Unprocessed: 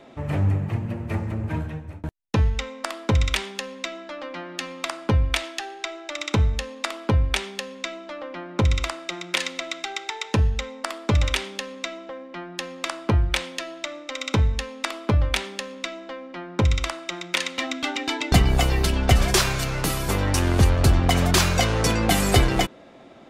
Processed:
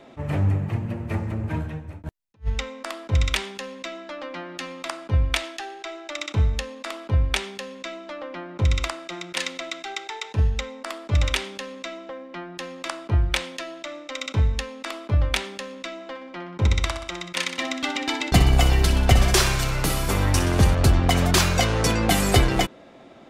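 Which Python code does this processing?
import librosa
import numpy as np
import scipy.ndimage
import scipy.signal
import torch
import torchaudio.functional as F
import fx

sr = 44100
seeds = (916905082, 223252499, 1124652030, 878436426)

y = fx.echo_feedback(x, sr, ms=62, feedback_pct=58, wet_db=-10.0, at=(15.94, 20.75))
y = fx.attack_slew(y, sr, db_per_s=420.0)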